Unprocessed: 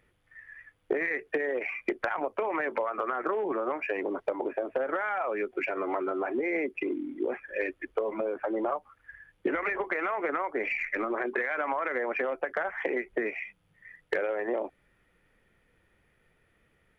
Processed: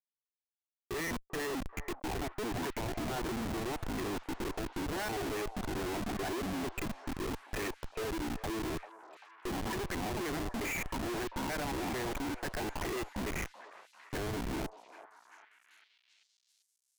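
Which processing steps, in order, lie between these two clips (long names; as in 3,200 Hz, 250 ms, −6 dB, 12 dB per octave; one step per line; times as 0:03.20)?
pitch shifter gated in a rhythm −10.5 semitones, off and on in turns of 221 ms
low-shelf EQ 64 Hz +11.5 dB
phaser with its sweep stopped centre 810 Hz, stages 8
comparator with hysteresis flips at −36.5 dBFS
echo through a band-pass that steps 392 ms, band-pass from 750 Hz, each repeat 0.7 octaves, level −9 dB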